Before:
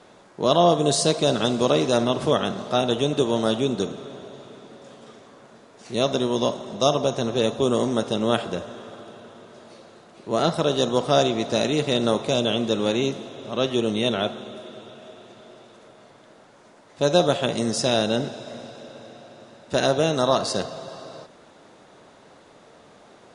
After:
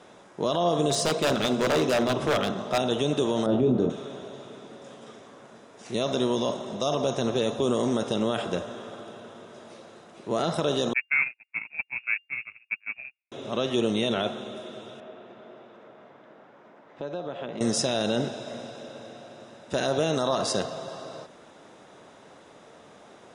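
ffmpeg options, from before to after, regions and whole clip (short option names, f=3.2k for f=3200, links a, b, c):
-filter_complex "[0:a]asettb=1/sr,asplit=3[a][b][c];[a]atrim=end=0.904[d];[b]atrim=start=0.9:end=2.78,asetpts=PTS-STARTPTS,afade=t=in:d=0.004:c=qsin,afade=t=out:st=1.876:d=0.004:c=qsin,highshelf=f=8k:g=-11,bandreject=f=60:t=h:w=6,bandreject=f=120:t=h:w=6,bandreject=f=180:t=h:w=6,bandreject=f=240:t=h:w=6,bandreject=f=300:t=h:w=6,bandreject=f=360:t=h:w=6,bandreject=f=420:t=h:w=6,bandreject=f=480:t=h:w=6,bandreject=f=540:t=h:w=6,aeval=exprs='0.15*(abs(mod(val(0)/0.15+3,4)-2)-1)':c=same[e];[c]atrim=start=2.776[f];[d][e]acrossfade=d=0.004:c1=hsin:c2=qsin[g];[g][f]acrossfade=d=0.004:c1=qsin:c2=hsin,asettb=1/sr,asplit=3[h][i][j];[h]atrim=end=3.464[k];[i]atrim=start=3.46:end=3.9,asetpts=PTS-STARTPTS,afade=t=in:d=0.004:c=qsin,afade=t=out:st=0.436:d=0.004:c=qsin,lowpass=f=1.6k:p=1,tiltshelf=f=910:g=6.5,asplit=2[l][m];[m]adelay=24,volume=-5dB[n];[l][n]amix=inputs=2:normalize=0,atrim=end_sample=19404[o];[j]atrim=start=3.896[p];[k][o]acrossfade=d=0.004:c1=hsin:c2=qsin[q];[q][p]acrossfade=d=0.004:c1=qsin:c2=hsin,asettb=1/sr,asplit=3[r][s][t];[r]atrim=end=10.934[u];[s]atrim=start=10.93:end=13.32,asetpts=PTS-STARTPTS,afade=t=in:d=0.004:c=qsin,afade=t=out:st=2.386:d=0.004:c=qsin,highpass=140,agate=range=-57dB:threshold=-20dB:ratio=16:release=100:detection=peak,lowpass=f=2.4k:t=q:w=0.5098,lowpass=f=2.4k:t=q:w=0.6013,lowpass=f=2.4k:t=q:w=0.9,lowpass=f=2.4k:t=q:w=2.563,afreqshift=-2800[v];[t]atrim=start=13.316[w];[u][v]acrossfade=d=0.004:c1=hsin:c2=qsin[x];[x][w]acrossfade=d=0.004:c1=qsin:c2=hsin,asettb=1/sr,asplit=3[y][z][aa];[y]atrim=end=15.004[ab];[z]atrim=start=15:end=17.61,asetpts=PTS-STARTPTS,afade=t=in:d=0.004:c=qsin,afade=t=out:st=2.606:d=0.004:c=qsin,highpass=140,lowpass=2.3k,acompressor=threshold=-32dB:ratio=4:attack=3.2:release=140:knee=1:detection=peak[ac];[aa]atrim=start=17.606[ad];[ab][ac]acrossfade=d=0.004:c1=hsin:c2=qsin[ae];[ae][ad]acrossfade=d=0.004:c1=qsin:c2=hsin,lowshelf=f=61:g=-7.5,alimiter=limit=-14.5dB:level=0:latency=1:release=30,bandreject=f=4.4k:w=8.7"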